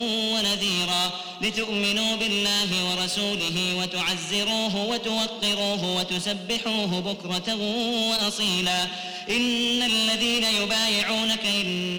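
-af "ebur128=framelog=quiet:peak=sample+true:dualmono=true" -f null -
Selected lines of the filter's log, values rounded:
Integrated loudness:
  I:         -20.2 LUFS
  Threshold: -30.2 LUFS
Loudness range:
  LRA:         2.8 LU
  Threshold: -40.5 LUFS
  LRA low:   -21.7 LUFS
  LRA high:  -18.9 LUFS
Sample peak:
  Peak:      -14.3 dBFS
True peak:
  Peak:      -14.2 dBFS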